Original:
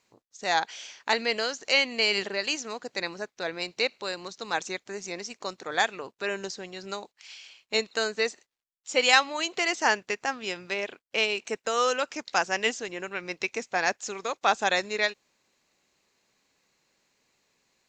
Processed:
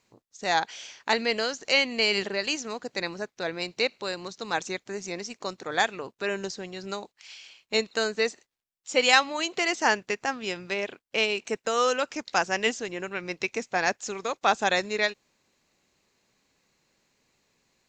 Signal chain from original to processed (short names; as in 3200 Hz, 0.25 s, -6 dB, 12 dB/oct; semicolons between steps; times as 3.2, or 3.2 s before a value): low shelf 270 Hz +7 dB